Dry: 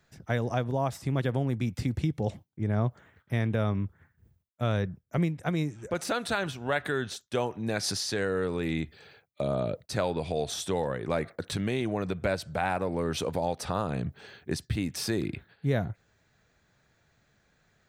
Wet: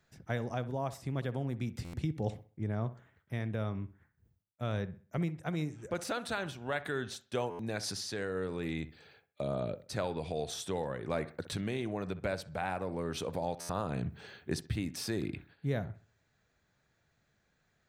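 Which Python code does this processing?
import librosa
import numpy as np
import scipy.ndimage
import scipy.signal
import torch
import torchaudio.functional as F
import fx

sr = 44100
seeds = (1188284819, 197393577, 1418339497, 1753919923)

p1 = fx.rider(x, sr, range_db=4, speed_s=0.5)
p2 = p1 + fx.echo_wet_lowpass(p1, sr, ms=64, feedback_pct=33, hz=2400.0, wet_db=-15.0, dry=0)
p3 = fx.buffer_glitch(p2, sr, at_s=(1.84, 7.5, 13.6), block=512, repeats=7)
y = p3 * 10.0 ** (-6.0 / 20.0)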